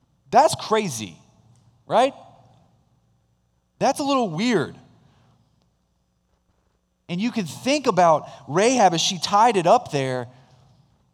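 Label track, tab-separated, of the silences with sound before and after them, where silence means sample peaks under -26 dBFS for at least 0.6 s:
1.090000	1.900000	silence
2.090000	3.810000	silence
4.650000	7.100000	silence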